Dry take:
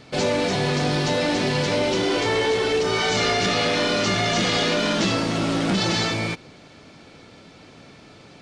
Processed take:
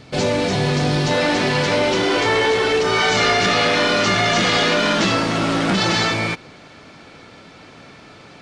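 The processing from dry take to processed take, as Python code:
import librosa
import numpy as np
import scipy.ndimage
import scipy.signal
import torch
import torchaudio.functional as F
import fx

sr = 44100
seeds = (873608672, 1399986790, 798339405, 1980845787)

y = fx.peak_eq(x, sr, hz=fx.steps((0.0, 82.0), (1.11, 1400.0)), db=5.5, octaves=2.0)
y = y * 10.0 ** (2.0 / 20.0)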